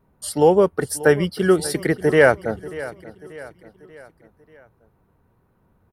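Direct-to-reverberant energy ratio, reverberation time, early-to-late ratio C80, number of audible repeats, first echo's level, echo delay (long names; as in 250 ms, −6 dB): no reverb audible, no reverb audible, no reverb audible, 3, −17.0 dB, 587 ms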